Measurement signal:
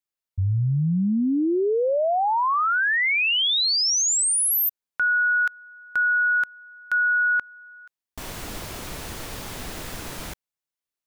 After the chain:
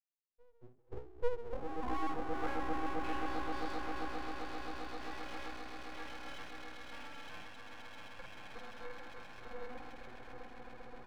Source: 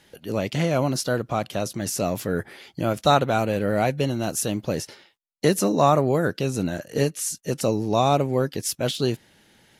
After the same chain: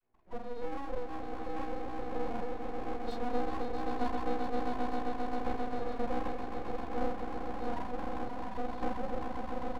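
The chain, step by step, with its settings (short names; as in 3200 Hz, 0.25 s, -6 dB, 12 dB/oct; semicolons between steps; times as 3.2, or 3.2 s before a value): arpeggiated vocoder major triad, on F#3, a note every 0.304 s; dynamic EQ 160 Hz, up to +4 dB, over -38 dBFS, Q 4.2; limiter -16.5 dBFS; octave resonator B, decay 0.41 s; diffused feedback echo 0.875 s, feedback 71%, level -12.5 dB; loudest bins only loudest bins 32; doubler 45 ms -2.5 dB; swelling echo 0.132 s, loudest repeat 8, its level -8 dB; full-wave rectifier; gain +7.5 dB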